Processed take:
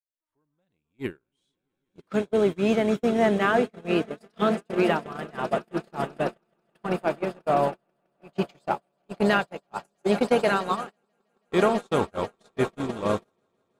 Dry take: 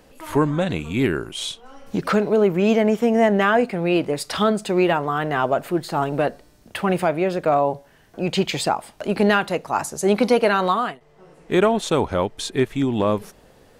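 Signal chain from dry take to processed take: opening faded in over 1.11 s; swelling echo 0.163 s, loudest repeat 8, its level -15 dB; gate -17 dBFS, range -44 dB; gain -4.5 dB

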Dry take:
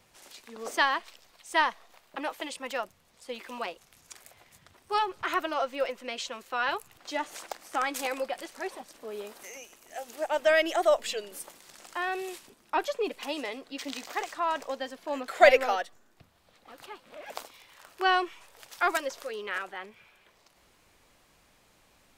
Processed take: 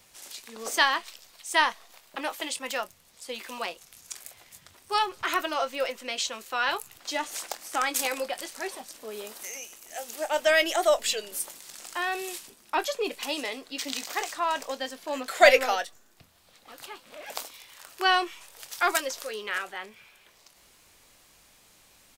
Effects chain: high shelf 3100 Hz +10.5 dB; doubler 23 ms -13 dB

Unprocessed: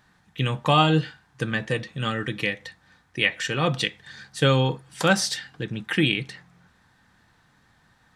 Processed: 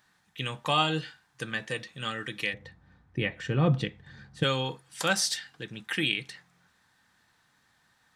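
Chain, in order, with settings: tilt +2 dB/oct, from 2.53 s -3.5 dB/oct, from 4.42 s +2 dB/oct; gain -6.5 dB

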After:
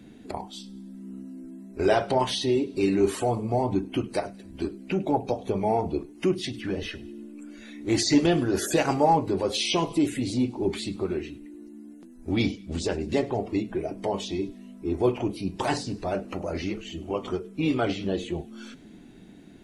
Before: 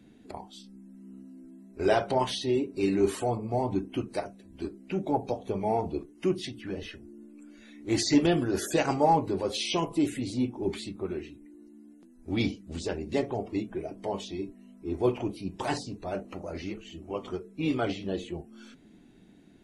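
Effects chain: in parallel at +2.5 dB: compressor, threshold -34 dBFS, peak gain reduction 16.5 dB; on the sum: thin delay 0.101 s, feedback 49%, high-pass 1700 Hz, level -20.5 dB; 12.32–12.94 mismatched tape noise reduction decoder only

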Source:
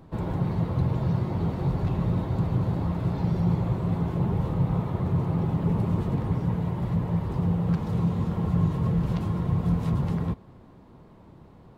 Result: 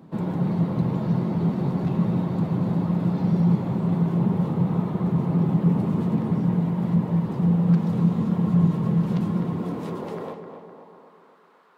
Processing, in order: high-pass sweep 190 Hz -> 1300 Hz, 9.26–11.27; on a send: tape echo 0.254 s, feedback 59%, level -7 dB, low-pass 2500 Hz

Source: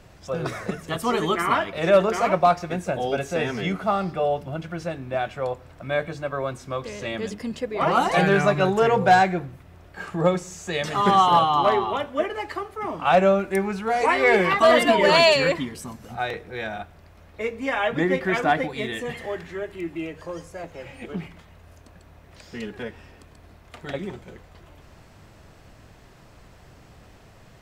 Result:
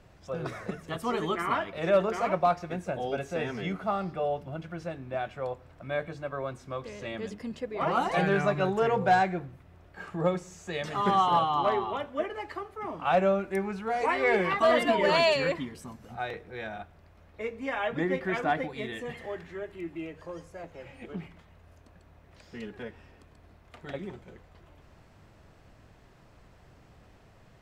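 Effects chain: high shelf 4100 Hz -6 dB; gain -6.5 dB

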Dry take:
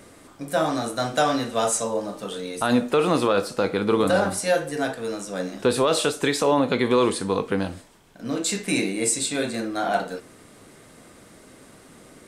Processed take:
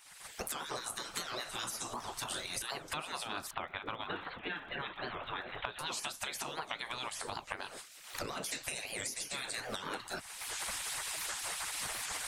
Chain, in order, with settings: recorder AGC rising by 35 dB/s; spectral gate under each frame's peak -15 dB weak; 3.51–5.79 steep low-pass 3700 Hz 96 dB/oct; harmonic-percussive split harmonic -14 dB; compressor, threshold -37 dBFS, peak gain reduction 12 dB; crackle 58/s -57 dBFS; record warp 78 rpm, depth 250 cents; gain +1 dB

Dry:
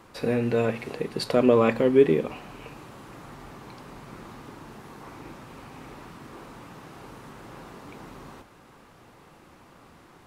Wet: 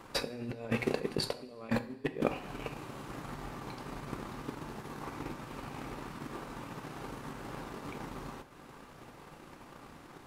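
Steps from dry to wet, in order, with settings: negative-ratio compressor -33 dBFS, ratio -1; transient shaper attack +10 dB, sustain -7 dB; reverb, pre-delay 3 ms, DRR 10 dB; gain -7.5 dB

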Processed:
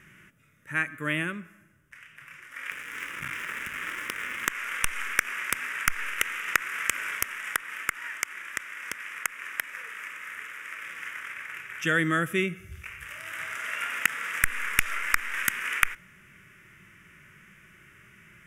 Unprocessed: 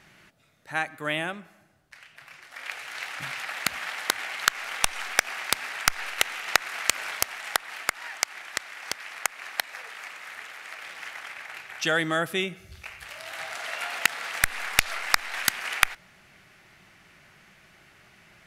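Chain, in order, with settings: 2.71–4.5 cycle switcher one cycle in 3, muted; harmonic-percussive split percussive -6 dB; fixed phaser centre 1800 Hz, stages 4; gain +5.5 dB

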